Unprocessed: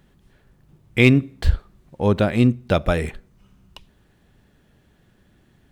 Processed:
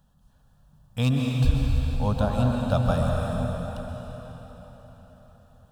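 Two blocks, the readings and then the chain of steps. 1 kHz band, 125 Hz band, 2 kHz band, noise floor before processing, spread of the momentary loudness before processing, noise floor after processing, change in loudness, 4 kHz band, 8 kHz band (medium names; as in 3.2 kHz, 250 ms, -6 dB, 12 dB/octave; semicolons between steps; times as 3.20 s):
-1.0 dB, -1.5 dB, -13.5 dB, -59 dBFS, 12 LU, -61 dBFS, -5.5 dB, -5.5 dB, -1.5 dB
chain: static phaser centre 880 Hz, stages 4; plate-style reverb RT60 4.6 s, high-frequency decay 0.85×, pre-delay 115 ms, DRR -1.5 dB; trim -4 dB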